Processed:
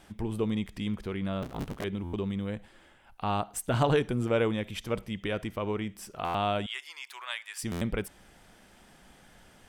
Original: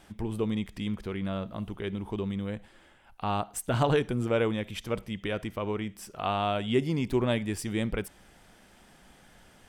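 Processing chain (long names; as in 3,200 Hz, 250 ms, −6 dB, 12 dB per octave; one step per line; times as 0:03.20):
0:01.42–0:01.84: sub-harmonics by changed cycles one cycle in 3, inverted
0:06.66–0:07.63: high-pass filter 1,100 Hz 24 dB per octave
buffer that repeats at 0:02.03/0:06.24/0:07.71, samples 512, times 8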